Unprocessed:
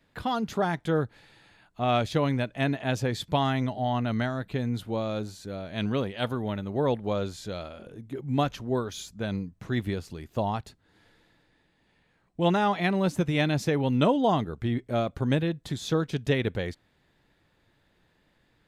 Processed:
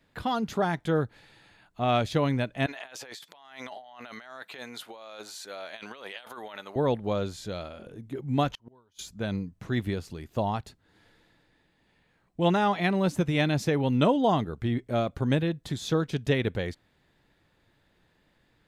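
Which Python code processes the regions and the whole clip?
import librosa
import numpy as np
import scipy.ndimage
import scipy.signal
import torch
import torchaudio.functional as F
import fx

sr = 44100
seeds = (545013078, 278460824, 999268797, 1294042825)

y = fx.chain(x, sr, fx.highpass(hz=820.0, slope=12),
    fx.over_compress(threshold_db=-44.0, ratio=-1.0), at=(2.66, 6.76))
y = fx.chain(y, sr, fx.small_body(hz=(940.0, 3000.0), ring_ms=25, db=12),
    fx.gate_flip(shuts_db=-27.0, range_db=-33), at=(8.52, 8.99))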